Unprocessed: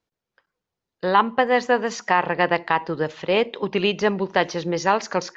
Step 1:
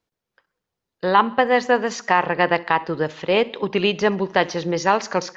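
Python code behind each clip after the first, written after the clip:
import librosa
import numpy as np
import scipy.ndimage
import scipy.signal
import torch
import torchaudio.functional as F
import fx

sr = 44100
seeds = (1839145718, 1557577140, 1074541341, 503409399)

y = fx.echo_feedback(x, sr, ms=65, feedback_pct=59, wet_db=-23)
y = y * 10.0 ** (1.5 / 20.0)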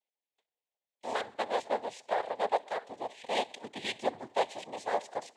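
y = fx.double_bandpass(x, sr, hz=1500.0, octaves=2.3)
y = fx.noise_vocoder(y, sr, seeds[0], bands=6)
y = y * 10.0 ** (-3.5 / 20.0)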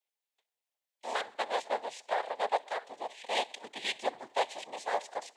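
y = fx.highpass(x, sr, hz=770.0, slope=6)
y = y * 10.0 ** (2.5 / 20.0)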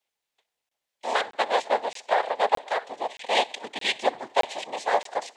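y = fx.high_shelf(x, sr, hz=9900.0, db=-9.5)
y = fx.buffer_crackle(y, sr, first_s=0.69, period_s=0.62, block=1024, kind='zero')
y = y * 10.0 ** (9.0 / 20.0)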